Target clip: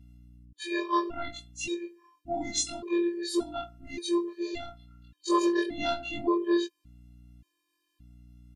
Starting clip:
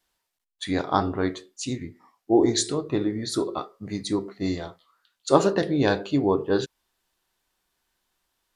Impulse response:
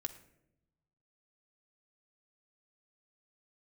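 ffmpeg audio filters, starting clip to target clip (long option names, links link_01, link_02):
-filter_complex "[0:a]afftfilt=real='re':imag='-im':win_size=2048:overlap=0.75,equalizer=frequency=2700:width_type=o:width=0.38:gain=9,afftfilt=real='hypot(re,im)*cos(PI*b)':imag='0':win_size=512:overlap=0.75,acrossover=split=180|830[link_01][link_02][link_03];[link_01]acompressor=threshold=-45dB:ratio=4[link_04];[link_02]acompressor=threshold=-29dB:ratio=4[link_05];[link_04][link_05][link_03]amix=inputs=3:normalize=0,aeval=exprs='val(0)+0.00126*(sin(2*PI*60*n/s)+sin(2*PI*2*60*n/s)/2+sin(2*PI*3*60*n/s)/3+sin(2*PI*4*60*n/s)/4+sin(2*PI*5*60*n/s)/5)':channel_layout=same,aresample=32000,aresample=44100,afftfilt=real='re*gt(sin(2*PI*0.87*pts/sr)*(1-2*mod(floor(b*sr/1024/320),2)),0)':imag='im*gt(sin(2*PI*0.87*pts/sr)*(1-2*mod(floor(b*sr/1024/320),2)),0)':win_size=1024:overlap=0.75,volume=7dB"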